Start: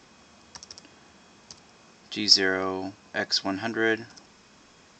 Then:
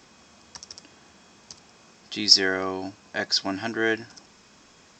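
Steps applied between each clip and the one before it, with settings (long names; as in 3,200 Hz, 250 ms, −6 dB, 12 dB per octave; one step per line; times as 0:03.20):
high-shelf EQ 6,800 Hz +5.5 dB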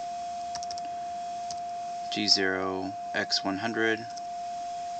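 steady tone 700 Hz −35 dBFS
multiband upward and downward compressor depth 40%
level −1 dB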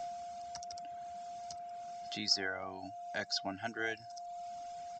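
reverb reduction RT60 1.1 s
comb filter 1.4 ms, depth 44%
level −9 dB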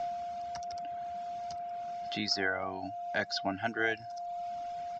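low-pass filter 3,600 Hz 12 dB per octave
level +6.5 dB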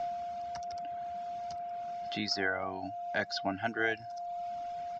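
high-shelf EQ 5,400 Hz −4.5 dB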